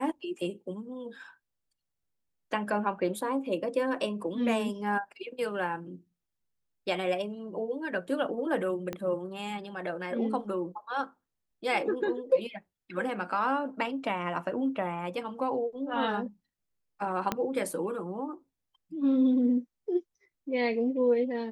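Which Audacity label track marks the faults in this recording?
8.930000	8.930000	click −20 dBFS
17.320000	17.320000	click −13 dBFS

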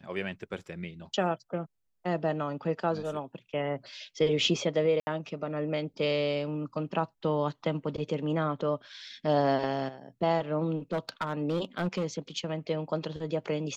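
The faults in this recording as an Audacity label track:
5.000000	5.070000	drop-out 70 ms
10.920000	12.050000	clipping −24.5 dBFS

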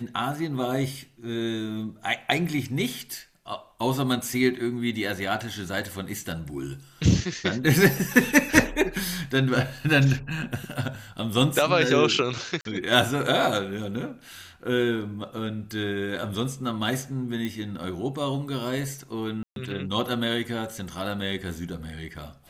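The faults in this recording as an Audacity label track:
12.610000	12.650000	drop-out 42 ms
17.450000	17.450000	click −18 dBFS
19.430000	19.560000	drop-out 132 ms

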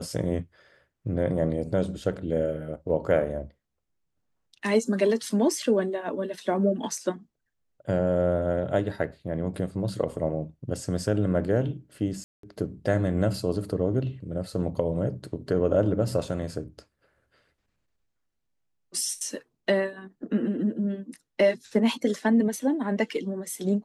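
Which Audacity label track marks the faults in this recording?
12.240000	12.430000	drop-out 193 ms

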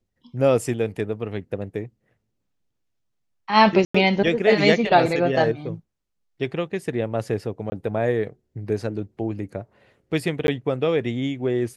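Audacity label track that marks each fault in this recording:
3.850000	3.940000	drop-out 95 ms
7.700000	7.720000	drop-out 20 ms
10.470000	10.480000	drop-out 11 ms

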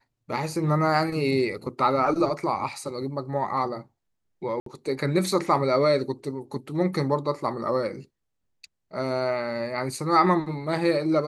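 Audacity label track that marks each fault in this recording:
4.600000	4.660000	drop-out 63 ms

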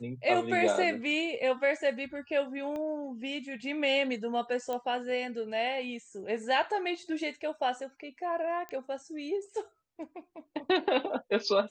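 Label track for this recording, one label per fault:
2.760000	2.760000	click −27 dBFS
4.730000	4.730000	click −22 dBFS
8.690000	8.690000	click −26 dBFS

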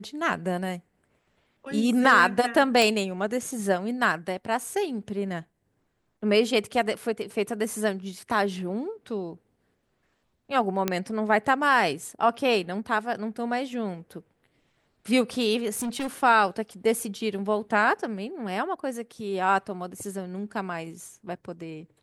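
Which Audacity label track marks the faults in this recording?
2.820000	2.820000	click
10.880000	10.880000	click −9 dBFS
15.750000	16.080000	clipping −26.5 dBFS

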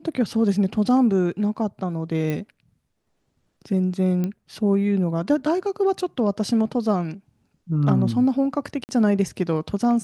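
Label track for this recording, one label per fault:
2.300000	2.300000	click −15 dBFS
4.240000	4.240000	click −15 dBFS
8.840000	8.890000	drop-out 49 ms

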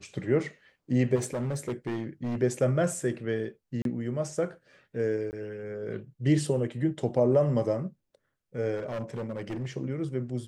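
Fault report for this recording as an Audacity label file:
1.150000	2.420000	clipping −27.5 dBFS
3.820000	3.850000	drop-out 32 ms
5.310000	5.330000	drop-out 19 ms
8.760000	9.670000	clipping −30 dBFS

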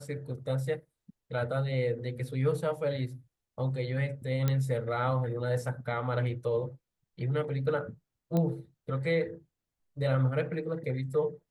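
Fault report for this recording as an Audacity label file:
4.480000	4.480000	click −15 dBFS
8.370000	8.370000	click −18 dBFS

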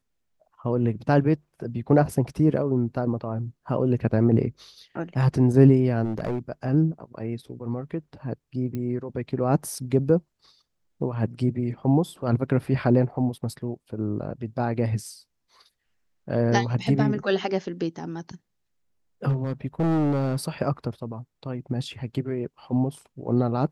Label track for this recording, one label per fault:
6.040000	6.390000	clipping −23 dBFS
8.750000	8.750000	click −20 dBFS
19.280000	20.370000	clipping −19.5 dBFS

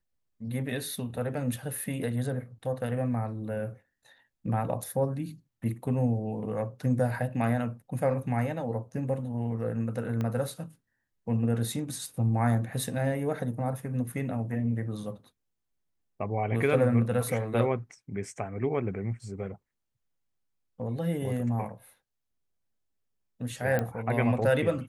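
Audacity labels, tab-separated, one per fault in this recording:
10.210000	10.210000	click −20 dBFS
23.790000	23.790000	click −16 dBFS

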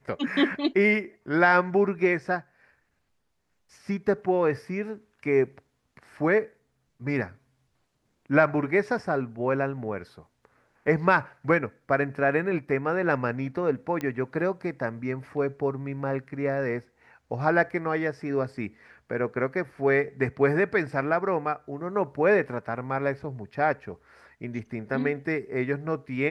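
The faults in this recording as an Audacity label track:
14.010000	14.010000	click −18 dBFS

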